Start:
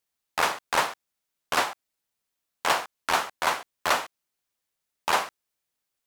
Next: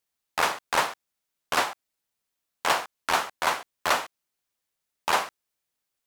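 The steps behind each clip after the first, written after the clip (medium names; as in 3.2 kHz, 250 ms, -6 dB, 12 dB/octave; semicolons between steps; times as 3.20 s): no audible change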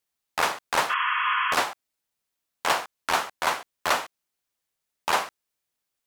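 spectral replace 0.92–1.51 s, 930–3400 Hz after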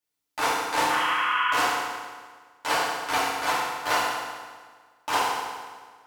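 FDN reverb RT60 1.6 s, low-frequency decay 1×, high-frequency decay 0.85×, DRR -9 dB; trim -8.5 dB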